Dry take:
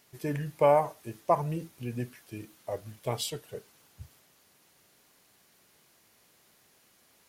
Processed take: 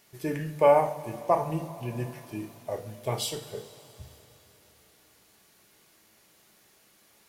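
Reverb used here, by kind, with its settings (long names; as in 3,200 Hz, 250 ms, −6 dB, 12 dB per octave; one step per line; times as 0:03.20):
coupled-rooms reverb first 0.44 s, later 3.7 s, from −17 dB, DRR 4 dB
level +1 dB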